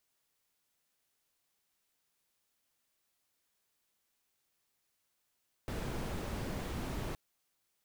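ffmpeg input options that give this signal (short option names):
-f lavfi -i "anoisesrc=c=brown:a=0.0589:d=1.47:r=44100:seed=1"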